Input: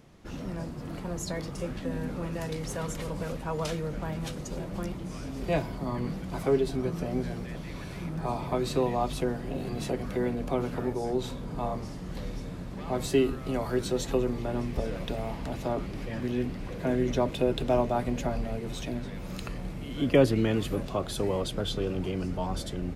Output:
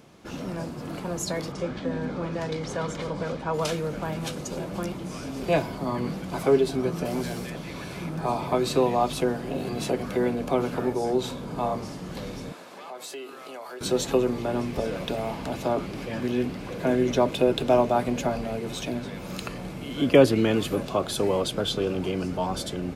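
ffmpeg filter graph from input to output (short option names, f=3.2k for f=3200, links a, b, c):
-filter_complex "[0:a]asettb=1/sr,asplit=3[a][b][c];[a]atrim=end=1.524[d];[b]atrim=start=1.52:end=3.54,asetpts=PTS-STARTPTS,afade=t=in:d=0.004:c=qsin,afade=t=out:st=2.016:d=0.004:c=qsin,lowpass=5k,bandreject=f=2.7k:w=9.7[e];[c]atrim=start=3.536[f];[d][e]acrossfade=d=0.004:c1=hsin:c2=qsin[g];[g][f]acrossfade=d=0.004:c1=qsin:c2=hsin,asettb=1/sr,asplit=3[h][i][j];[h]atrim=end=7.054[k];[i]atrim=start=7.05:end=7.5,asetpts=PTS-STARTPTS,afade=t=in:d=0.004:c=qsin,afade=t=out:st=0.446:d=0.004:c=qsin,highshelf=f=4.6k:g=11.5,asoftclip=type=hard:threshold=-27dB[l];[j]atrim=start=7.496[m];[k][l]acrossfade=d=0.004:c1=hsin:c2=qsin[n];[n][m]acrossfade=d=0.004:c1=qsin:c2=hsin,asettb=1/sr,asplit=3[o][p][q];[o]atrim=end=12.524[r];[p]atrim=start=12.52:end=13.81,asetpts=PTS-STARTPTS,afade=t=in:d=0.004:c=qsin,afade=t=out:st=1.286:d=0.004:c=qsin,highpass=540,acompressor=threshold=-44dB:ratio=3:attack=3.2:release=140:knee=1:detection=peak[s];[q]atrim=start=13.806[t];[r][s]acrossfade=d=0.004:c1=hsin:c2=qsin[u];[u][t]acrossfade=d=0.004:c1=qsin:c2=hsin,highpass=f=210:p=1,bandreject=f=1.9k:w=14,volume=6dB"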